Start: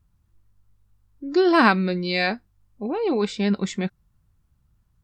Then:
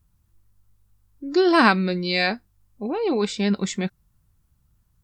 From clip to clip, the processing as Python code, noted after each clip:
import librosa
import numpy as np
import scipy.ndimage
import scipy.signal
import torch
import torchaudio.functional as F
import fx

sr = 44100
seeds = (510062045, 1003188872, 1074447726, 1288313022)

y = fx.high_shelf(x, sr, hz=5900.0, db=9.0)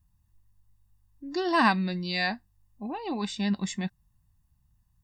y = x + 0.69 * np.pad(x, (int(1.1 * sr / 1000.0), 0))[:len(x)]
y = F.gain(torch.from_numpy(y), -7.5).numpy()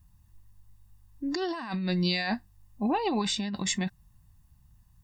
y = fx.over_compress(x, sr, threshold_db=-33.0, ratio=-1.0)
y = F.gain(torch.from_numpy(y), 3.5).numpy()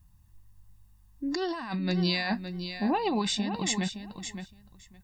y = fx.echo_feedback(x, sr, ms=565, feedback_pct=15, wet_db=-9.5)